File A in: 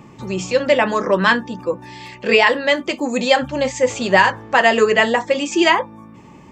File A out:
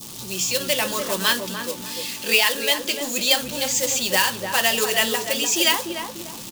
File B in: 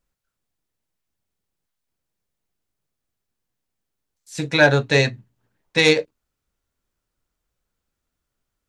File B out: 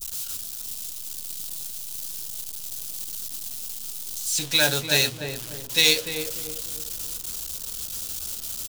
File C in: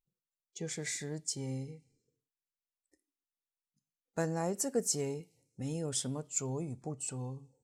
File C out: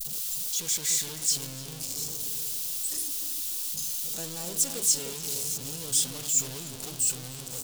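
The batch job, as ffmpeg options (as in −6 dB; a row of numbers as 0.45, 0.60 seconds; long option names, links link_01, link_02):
-filter_complex "[0:a]aeval=exprs='val(0)+0.5*0.0398*sgn(val(0))':channel_layout=same,acrusher=bits=4:mode=log:mix=0:aa=0.000001,aexciter=amount=5.2:drive=7:freq=2900,asplit=2[link_01][link_02];[link_02]adelay=297,lowpass=frequency=870:poles=1,volume=-4dB,asplit=2[link_03][link_04];[link_04]adelay=297,lowpass=frequency=870:poles=1,volume=0.45,asplit=2[link_05][link_06];[link_06]adelay=297,lowpass=frequency=870:poles=1,volume=0.45,asplit=2[link_07][link_08];[link_08]adelay=297,lowpass=frequency=870:poles=1,volume=0.45,asplit=2[link_09][link_10];[link_10]adelay=297,lowpass=frequency=870:poles=1,volume=0.45,asplit=2[link_11][link_12];[link_12]adelay=297,lowpass=frequency=870:poles=1,volume=0.45[link_13];[link_03][link_05][link_07][link_09][link_11][link_13]amix=inputs=6:normalize=0[link_14];[link_01][link_14]amix=inputs=2:normalize=0,adynamicequalizer=threshold=0.0447:dfrequency=2000:dqfactor=0.95:tfrequency=2000:tqfactor=0.95:attack=5:release=100:ratio=0.375:range=2.5:mode=boostabove:tftype=bell,volume=-12.5dB"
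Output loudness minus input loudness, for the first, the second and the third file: −4.0, −8.0, +9.0 LU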